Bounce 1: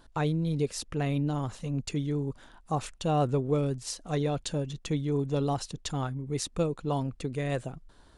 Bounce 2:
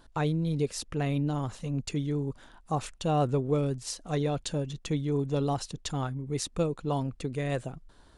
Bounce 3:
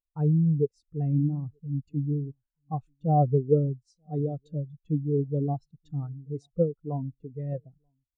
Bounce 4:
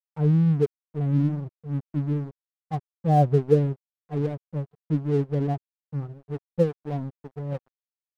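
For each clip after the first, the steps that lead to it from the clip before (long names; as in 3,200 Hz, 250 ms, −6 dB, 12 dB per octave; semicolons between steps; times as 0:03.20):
no processing that can be heard
slap from a distant wall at 160 metres, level −17 dB; every bin expanded away from the loudest bin 2.5 to 1; level +4.5 dB
dead-zone distortion −41.5 dBFS; level +3.5 dB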